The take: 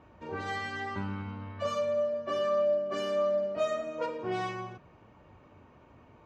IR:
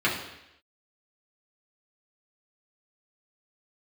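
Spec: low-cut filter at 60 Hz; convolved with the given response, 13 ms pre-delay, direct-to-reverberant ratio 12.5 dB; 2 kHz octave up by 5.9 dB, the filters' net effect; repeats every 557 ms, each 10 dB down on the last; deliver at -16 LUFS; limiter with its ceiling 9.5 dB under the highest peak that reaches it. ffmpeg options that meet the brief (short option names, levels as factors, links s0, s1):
-filter_complex "[0:a]highpass=60,equalizer=f=2000:t=o:g=7,alimiter=level_in=1.68:limit=0.0631:level=0:latency=1,volume=0.596,aecho=1:1:557|1114|1671|2228:0.316|0.101|0.0324|0.0104,asplit=2[s0][s1];[1:a]atrim=start_sample=2205,adelay=13[s2];[s1][s2]afir=irnorm=-1:irlink=0,volume=0.0447[s3];[s0][s3]amix=inputs=2:normalize=0,volume=10.6"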